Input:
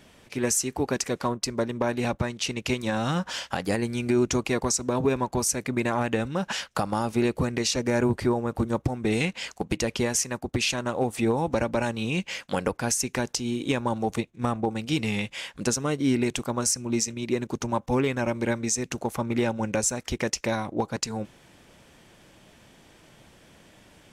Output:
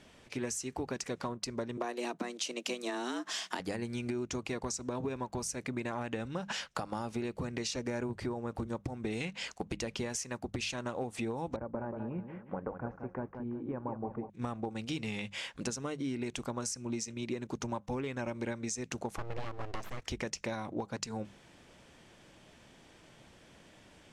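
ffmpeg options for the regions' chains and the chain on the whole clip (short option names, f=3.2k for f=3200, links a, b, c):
-filter_complex "[0:a]asettb=1/sr,asplit=3[a][b][c];[a]atrim=end=1.774[d];[b]atrim=start=1.77:end=3.6,asetpts=PTS-STARTPTS,afade=t=in:d=0.004:c=qsin,afade=t=out:st=1.826:d=0.004:c=qsin,highshelf=f=5.5k:g=9.5,afreqshift=120[e];[c]atrim=start=3.596[f];[d][e]acrossfade=d=0.004:c1=hsin:c2=qsin[g];[g][f]acrossfade=d=0.004:c1=qsin:c2=hsin,asettb=1/sr,asplit=3[h][i][j];[h]atrim=end=11.564[k];[i]atrim=start=11.56:end=14.3,asetpts=PTS-STARTPTS,afade=t=in:d=0.004:c=qsin,afade=t=out:st=2.736:d=0.004:c=qsin,lowpass=f=1.3k:w=0.5412,lowpass=f=1.3k:w=1.3066,aecho=1:1:182|364|546|728:0.355|0.124|0.0435|0.0152,atrim=end_sample=120834,flanger=delay=0.4:depth=5.3:regen=79:speed=1.6:shape=sinusoidal[l];[j]atrim=start=14.296[m];[k][l]acrossfade=d=0.004:c1=hsin:c2=qsin[n];[n][m]acrossfade=d=0.004:c1=qsin:c2=hsin,asettb=1/sr,asplit=3[o][p][q];[o]atrim=end=19.184[r];[p]atrim=start=19.18:end=20.02,asetpts=PTS-STARTPTS,afade=t=in:d=0.004:c=qsin,afade=t=out:st=0.836:d=0.004:c=qsin,lowpass=f=2.1k:p=1,aeval=exprs='abs(val(0))':c=same[s];[q]atrim=start=20.016[t];[r][s]acrossfade=d=0.004:c1=hsin:c2=qsin[u];[u][t]acrossfade=d=0.004:c1=qsin:c2=hsin,acompressor=threshold=-29dB:ratio=6,lowpass=9.1k,bandreject=f=50:t=h:w=6,bandreject=f=100:t=h:w=6,bandreject=f=150:t=h:w=6,bandreject=f=200:t=h:w=6,volume=-4dB"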